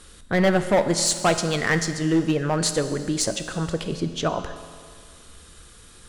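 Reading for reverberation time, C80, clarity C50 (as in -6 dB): 2.0 s, 11.0 dB, 10.0 dB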